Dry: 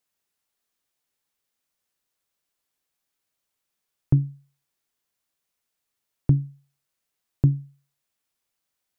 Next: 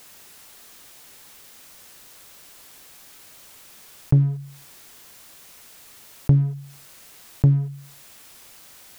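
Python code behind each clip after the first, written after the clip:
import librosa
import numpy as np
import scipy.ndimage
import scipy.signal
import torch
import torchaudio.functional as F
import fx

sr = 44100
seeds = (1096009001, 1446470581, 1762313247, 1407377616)

y = fx.leveller(x, sr, passes=1)
y = fx.env_flatten(y, sr, amount_pct=50)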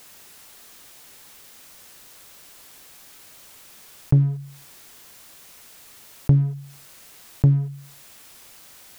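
y = x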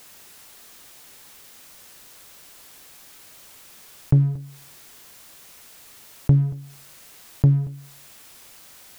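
y = x + 10.0 ** (-20.5 / 20.0) * np.pad(x, (int(231 * sr / 1000.0), 0))[:len(x)]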